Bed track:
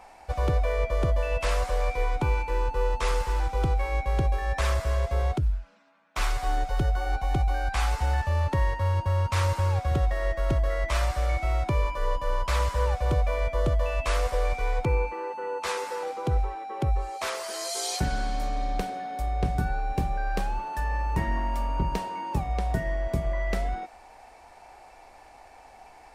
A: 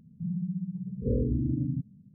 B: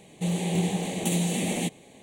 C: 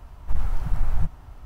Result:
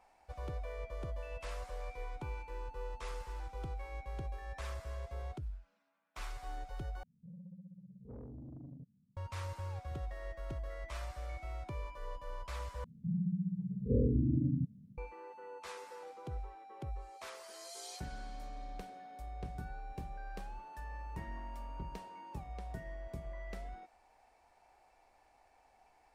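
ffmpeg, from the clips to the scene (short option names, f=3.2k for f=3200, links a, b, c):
-filter_complex "[1:a]asplit=2[a][b];[0:a]volume=-17dB[c];[a]asoftclip=type=tanh:threshold=-25.5dB[d];[c]asplit=3[e][f][g];[e]atrim=end=7.034[h];[d]atrim=end=2.14,asetpts=PTS-STARTPTS,volume=-18dB[i];[f]atrim=start=9.166:end=12.844[j];[b]atrim=end=2.14,asetpts=PTS-STARTPTS,volume=-2.5dB[k];[g]atrim=start=14.976[l];[h][i]acrossfade=d=0.004:c1=hsin:c2=hsin[m];[m][j]acrossfade=d=0.004:c1=hsin:c2=hsin[n];[n][k]acrossfade=d=0.004:c1=hsin:c2=hsin[o];[o][l]acrossfade=d=0.004:c1=hsin:c2=hsin"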